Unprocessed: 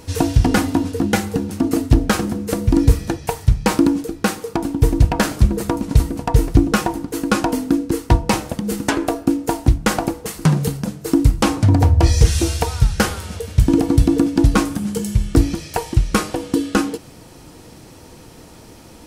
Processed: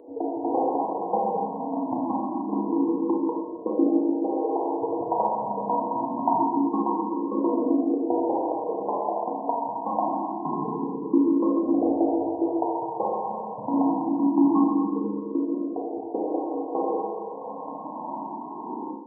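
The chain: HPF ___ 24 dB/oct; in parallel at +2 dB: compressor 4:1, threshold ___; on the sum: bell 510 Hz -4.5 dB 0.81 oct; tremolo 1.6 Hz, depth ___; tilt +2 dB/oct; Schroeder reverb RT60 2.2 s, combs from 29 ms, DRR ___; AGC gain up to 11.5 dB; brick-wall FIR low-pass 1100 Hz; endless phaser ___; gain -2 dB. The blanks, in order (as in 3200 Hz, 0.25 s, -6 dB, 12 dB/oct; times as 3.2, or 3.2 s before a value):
290 Hz, -31 dBFS, 48%, -4.5 dB, +0.25 Hz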